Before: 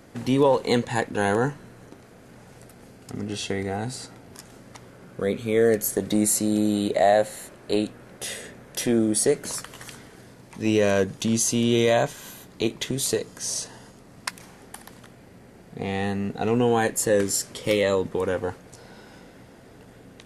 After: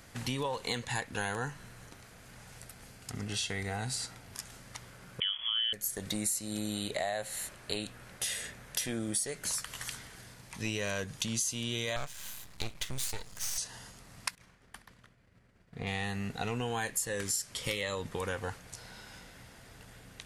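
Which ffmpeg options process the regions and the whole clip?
-filter_complex "[0:a]asettb=1/sr,asplit=3[s0][s1][s2];[s0]atrim=end=5.204[s3];[s1]atrim=start=5.2:end=5.73,asetpts=PTS-STARTPTS,afade=t=in:d=0.004:c=qsin,afade=t=out:st=0.526:d=0.004:c=qsin,acrusher=bits=5:mix=0:aa=0.5,lowpass=f=3000:t=q:w=0.5098,lowpass=f=3000:t=q:w=0.6013,lowpass=f=3000:t=q:w=0.9,lowpass=f=3000:t=q:w=2.563,afreqshift=-3500[s4];[s2]atrim=start=5.726[s5];[s3][s4]acrossfade=d=0.004:c1=hsin:c2=qsin[s6];[s6][s5]acrossfade=d=0.004:c1=qsin:c2=hsin,asettb=1/sr,asplit=3[s7][s8][s9];[s7]atrim=end=11.964[s10];[s8]atrim=start=11.96:end=13.58,asetpts=PTS-STARTPTS,afade=t=in:d=0.004:c=qsin,afade=t=out:st=1.616:d=0.004:c=qsin,asubboost=boost=3.5:cutoff=150,aeval=exprs='max(val(0),0)':c=same[s11];[s9]atrim=start=13.576[s12];[s10][s11]acrossfade=d=0.004:c1=hsin:c2=qsin[s13];[s13][s12]acrossfade=d=0.004:c1=qsin:c2=hsin,asettb=1/sr,asplit=3[s14][s15][s16];[s14]atrim=end=14.354[s17];[s15]atrim=start=14.35:end=15.87,asetpts=PTS-STARTPTS,afade=t=in:d=0.004:c=qsin,afade=t=out:st=1.516:d=0.004:c=qsin,lowpass=f=2000:p=1,agate=range=0.0224:threshold=0.00794:ratio=3:release=100:detection=peak,equalizer=f=820:t=o:w=0.34:g=-6.5[s18];[s16]atrim=start=15.866[s19];[s17][s18]acrossfade=d=0.004:c1=hsin:c2=qsin[s20];[s20][s19]acrossfade=d=0.004:c1=qsin:c2=hsin,equalizer=f=340:t=o:w=2.7:g=-15,acompressor=threshold=0.02:ratio=5,volume=1.41"

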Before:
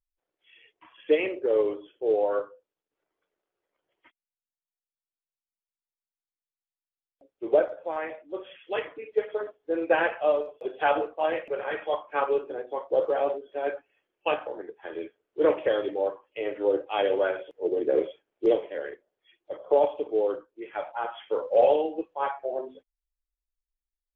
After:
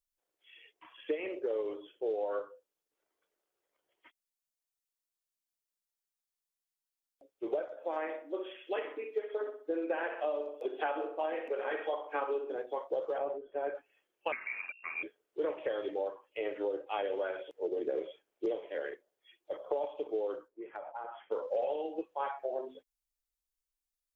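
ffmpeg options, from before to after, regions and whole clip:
-filter_complex "[0:a]asettb=1/sr,asplit=3[s0][s1][s2];[s0]atrim=end=7.754[s3];[s1]atrim=start=7.75:end=12.56,asetpts=PTS-STARTPTS,afade=t=in:d=0.004:c=qsin,afade=t=out:st=4.806:d=0.004:c=qsin,lowshelf=f=210:t=q:w=3:g=-6.5,asplit=2[s4][s5];[s5]adelay=64,lowpass=f=2300:p=1,volume=0.299,asplit=2[s6][s7];[s7]adelay=64,lowpass=f=2300:p=1,volume=0.41,asplit=2[s8][s9];[s9]adelay=64,lowpass=f=2300:p=1,volume=0.41,asplit=2[s10][s11];[s11]adelay=64,lowpass=f=2300:p=1,volume=0.41[s12];[s4][s6][s8][s10][s12]amix=inputs=5:normalize=0,atrim=end_sample=212121[s13];[s2]atrim=start=12.556[s14];[s3][s13]acrossfade=d=0.004:c1=hsin:c2=qsin[s15];[s15][s14]acrossfade=d=0.004:c1=qsin:c2=hsin,asettb=1/sr,asplit=3[s16][s17][s18];[s16]atrim=end=13.184[s19];[s17]atrim=start=13.18:end=13.75,asetpts=PTS-STARTPTS,afade=t=in:d=0.004:c=qsin,afade=t=out:st=0.566:d=0.004:c=qsin,lowpass=1700,lowshelf=f=90:g=10.5[s20];[s18]atrim=start=13.746[s21];[s19][s20]acrossfade=d=0.004:c1=hsin:c2=qsin[s22];[s22][s21]acrossfade=d=0.004:c1=qsin:c2=hsin,asettb=1/sr,asplit=3[s23][s24][s25];[s23]atrim=end=14.324[s26];[s24]atrim=start=14.32:end=15.03,asetpts=PTS-STARTPTS,afade=t=in:d=0.004:c=qsin,afade=t=out:st=0.706:d=0.004:c=qsin,acrusher=bits=6:mix=0:aa=0.5,aeval=exprs='val(0)+0.00158*(sin(2*PI*60*n/s)+sin(2*PI*2*60*n/s)/2+sin(2*PI*3*60*n/s)/3+sin(2*PI*4*60*n/s)/4+sin(2*PI*5*60*n/s)/5)':c=same,lowpass=f=2400:t=q:w=0.5098,lowpass=f=2400:t=q:w=0.6013,lowpass=f=2400:t=q:w=0.9,lowpass=f=2400:t=q:w=2.563,afreqshift=-2800[s27];[s25]atrim=start=15.026[s28];[s26][s27]acrossfade=d=0.004:c1=hsin:c2=qsin[s29];[s29][s28]acrossfade=d=0.004:c1=qsin:c2=hsin,asettb=1/sr,asplit=3[s30][s31][s32];[s30]atrim=end=20.484[s33];[s31]atrim=start=20.48:end=21.32,asetpts=PTS-STARTPTS,afade=t=in:d=0.004:c=qsin,afade=t=out:st=0.836:d=0.004:c=qsin,lowpass=1300,acompressor=threshold=0.0178:ratio=10:attack=3.2:release=140:knee=1:detection=peak[s34];[s32]atrim=start=21.316[s35];[s33][s34]acrossfade=d=0.004:c1=hsin:c2=qsin[s36];[s36][s35]acrossfade=d=0.004:c1=qsin:c2=hsin,acrossover=split=2800[s37][s38];[s38]acompressor=threshold=0.00282:ratio=4:attack=1:release=60[s39];[s37][s39]amix=inputs=2:normalize=0,bass=f=250:g=-6,treble=f=4000:g=7,acompressor=threshold=0.0355:ratio=6,volume=0.794"

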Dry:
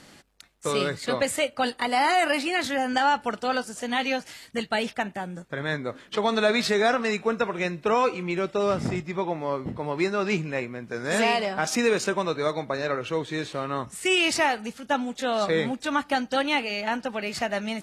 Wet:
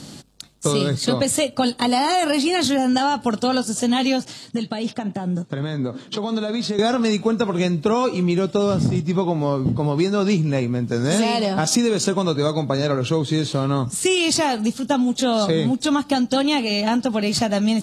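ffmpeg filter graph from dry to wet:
-filter_complex "[0:a]asettb=1/sr,asplit=3[s0][s1][s2];[s0]atrim=end=4.254[s3];[s1]atrim=start=4.25:end=6.79,asetpts=PTS-STARTPTS,afade=t=in:d=0.004:c=qsin,afade=t=out:st=2.536:d=0.004:c=qsin,acompressor=threshold=0.0251:ratio=5:attack=3.2:release=140:knee=1:detection=peak,highpass=120,lowpass=7900,adynamicequalizer=threshold=0.00316:dfrequency=1800:dqfactor=0.7:tfrequency=1800:tqfactor=0.7:attack=5:release=100:ratio=0.375:range=2.5:mode=cutabove:tftype=highshelf[s4];[s2]atrim=start=6.786[s5];[s3][s4]acrossfade=d=0.004:c1=hsin:c2=qsin[s6];[s6][s5]acrossfade=d=0.004:c1=qsin:c2=hsin,equalizer=f=125:t=o:w=1:g=11,equalizer=f=250:t=o:w=1:g=6,equalizer=f=2000:t=o:w=1:g=-9,equalizer=f=4000:t=o:w=1:g=6,equalizer=f=8000:t=o:w=1:g=5,acompressor=threshold=0.0708:ratio=6,volume=2.37"

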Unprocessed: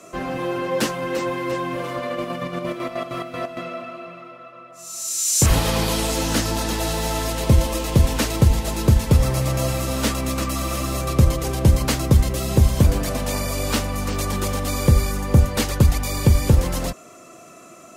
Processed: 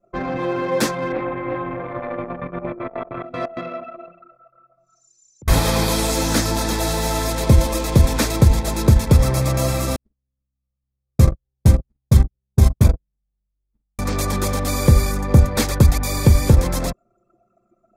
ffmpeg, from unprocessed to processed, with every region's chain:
-filter_complex "[0:a]asettb=1/sr,asplit=3[s0][s1][s2];[s0]atrim=end=1.124[s3];[s1]atrim=start=1.12:end=3.24,asetpts=PTS-STARTPTS,afade=t=in:d=0.004:c=qsin,afade=t=out:st=2.116:d=0.004:c=qsin,lowpass=f=2900:w=0.5412,lowpass=f=2900:w=1.3066,tremolo=f=230:d=0.621[s4];[s2]atrim=start=3.236[s5];[s3][s4]acrossfade=d=0.004:c1=hsin:c2=qsin[s6];[s6][s5]acrossfade=d=0.004:c1=qsin:c2=hsin,asettb=1/sr,asplit=3[s7][s8][s9];[s7]atrim=end=4.404[s10];[s8]atrim=start=4.4:end=5.48,asetpts=PTS-STARTPTS,afade=t=in:d=0.004:c=qsin,afade=t=out:st=1.076:d=0.004:c=qsin,lowpass=4200,acompressor=threshold=0.0158:ratio=16:attack=3.2:release=140:knee=1:detection=peak[s11];[s9]atrim=start=5.476[s12];[s10][s11]acrossfade=d=0.004:c1=hsin:c2=qsin[s13];[s13][s12]acrossfade=d=0.004:c1=qsin:c2=hsin,asettb=1/sr,asplit=3[s14][s15][s16];[s14]atrim=end=9.964[s17];[s15]atrim=start=9.96:end=13.99,asetpts=PTS-STARTPTS,afade=t=in:d=0.004:c=qsin,afade=t=out:st=4.026:d=0.004:c=qsin,agate=range=0.00562:threshold=0.178:ratio=16:release=100:detection=peak,asplit=2[s18][s19];[s19]adelay=46,volume=0.335[s20];[s18][s20]amix=inputs=2:normalize=0,atrim=end_sample=177723[s21];[s16]atrim=start=13.986[s22];[s17][s21]acrossfade=d=0.004:c1=hsin:c2=qsin[s23];[s23][s22]acrossfade=d=0.004:c1=qsin:c2=hsin,anlmdn=25.1,bandreject=f=2900:w=5.8,volume=1.33"

